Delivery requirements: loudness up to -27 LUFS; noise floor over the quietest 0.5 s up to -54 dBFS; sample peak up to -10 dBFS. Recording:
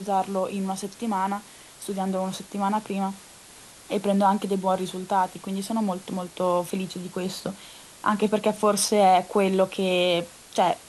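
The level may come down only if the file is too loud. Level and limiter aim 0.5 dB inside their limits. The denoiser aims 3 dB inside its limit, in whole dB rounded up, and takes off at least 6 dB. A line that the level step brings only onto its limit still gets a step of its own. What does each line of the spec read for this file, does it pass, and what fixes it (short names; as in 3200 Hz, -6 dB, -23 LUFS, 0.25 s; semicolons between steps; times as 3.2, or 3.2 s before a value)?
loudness -25.5 LUFS: fail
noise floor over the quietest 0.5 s -48 dBFS: fail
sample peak -8.5 dBFS: fail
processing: denoiser 7 dB, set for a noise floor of -48 dBFS; gain -2 dB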